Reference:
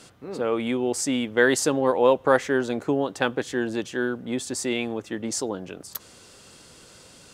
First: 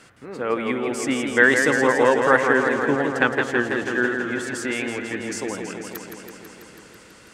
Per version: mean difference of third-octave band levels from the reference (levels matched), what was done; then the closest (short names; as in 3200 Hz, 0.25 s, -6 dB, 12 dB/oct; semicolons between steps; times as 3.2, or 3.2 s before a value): 7.0 dB: EQ curve 750 Hz 0 dB, 1900 Hz +9 dB, 3600 Hz -3 dB; in parallel at -3 dB: level quantiser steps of 23 dB; on the sum: warbling echo 0.164 s, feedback 76%, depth 98 cents, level -6 dB; gain -2.5 dB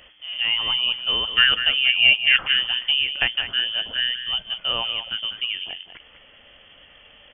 13.5 dB: notch 1100 Hz, Q 20; echo 0.195 s -10 dB; inverted band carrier 3300 Hz; gain +2 dB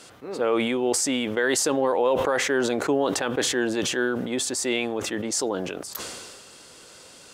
5.0 dB: tone controls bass -9 dB, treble 0 dB; limiter -15.5 dBFS, peak gain reduction 9.5 dB; sustainer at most 32 dB/s; gain +2.5 dB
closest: third